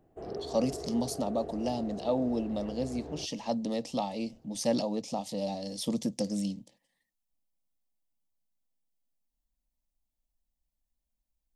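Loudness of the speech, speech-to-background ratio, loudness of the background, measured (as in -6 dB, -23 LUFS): -33.0 LUFS, 9.5 dB, -42.5 LUFS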